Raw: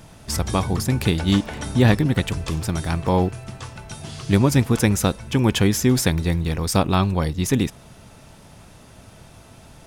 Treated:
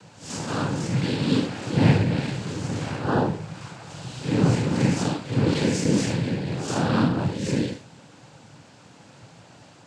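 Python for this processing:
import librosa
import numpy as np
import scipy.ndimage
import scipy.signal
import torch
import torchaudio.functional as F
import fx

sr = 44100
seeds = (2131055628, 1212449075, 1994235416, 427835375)

y = fx.spec_blur(x, sr, span_ms=134.0)
y = y + 10.0 ** (-11.0 / 20.0) * np.pad(y, (int(75 * sr / 1000.0), 0))[:len(y)]
y = fx.noise_vocoder(y, sr, seeds[0], bands=8)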